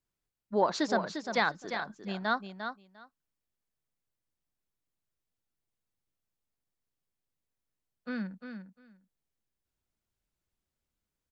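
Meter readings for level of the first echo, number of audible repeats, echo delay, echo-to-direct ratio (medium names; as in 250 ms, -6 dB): -8.0 dB, 2, 350 ms, -8.0 dB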